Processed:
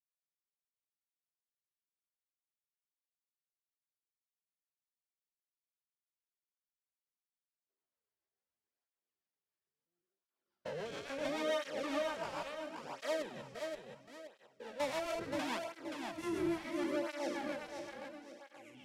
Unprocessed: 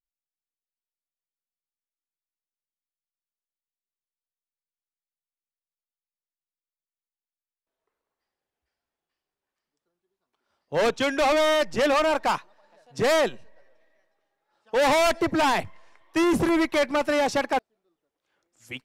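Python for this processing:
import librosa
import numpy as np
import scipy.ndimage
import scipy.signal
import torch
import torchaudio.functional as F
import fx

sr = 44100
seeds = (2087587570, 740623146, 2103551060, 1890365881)

y = fx.spec_steps(x, sr, hold_ms=200)
y = fx.rotary(y, sr, hz=7.0)
y = fx.echo_feedback(y, sr, ms=525, feedback_pct=36, wet_db=-5)
y = fx.rev_schroeder(y, sr, rt60_s=1.8, comb_ms=32, drr_db=17.0)
y = fx.flanger_cancel(y, sr, hz=0.73, depth_ms=4.3)
y = y * librosa.db_to_amplitude(-7.5)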